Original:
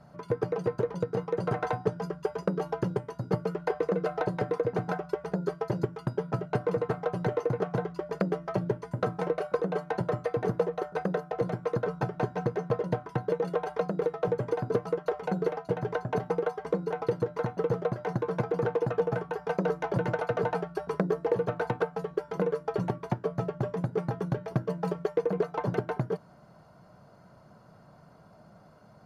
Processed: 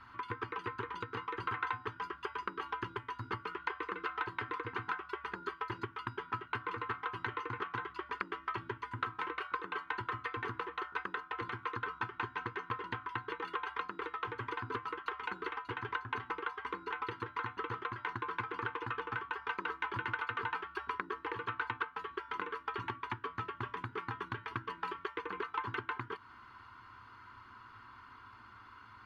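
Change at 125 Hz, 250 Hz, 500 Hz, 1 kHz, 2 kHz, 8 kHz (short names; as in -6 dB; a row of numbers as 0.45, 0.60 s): -15.0 dB, -15.0 dB, -18.0 dB, -2.0 dB, +3.0 dB, n/a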